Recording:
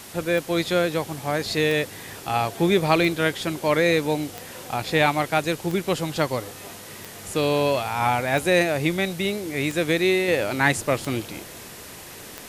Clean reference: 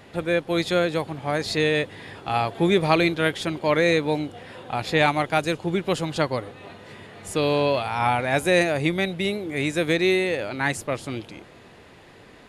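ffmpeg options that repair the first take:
-af "adeclick=t=4,afwtdn=0.0089,asetnsamples=n=441:p=0,asendcmd='10.28 volume volume -4.5dB',volume=1"

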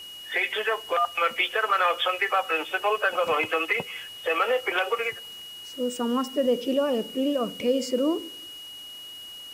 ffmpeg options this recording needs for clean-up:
-af "bandreject=f=2900:w=30,afwtdn=0.0032"

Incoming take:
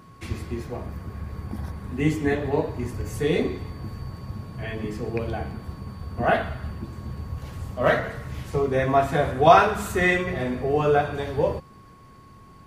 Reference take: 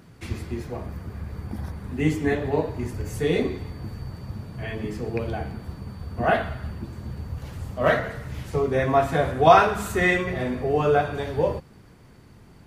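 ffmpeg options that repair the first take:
-af "bandreject=f=1100:w=30"

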